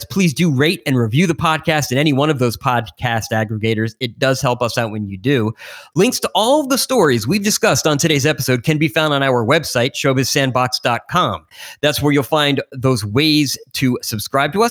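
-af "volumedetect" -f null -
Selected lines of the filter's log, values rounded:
mean_volume: -16.4 dB
max_volume: -2.1 dB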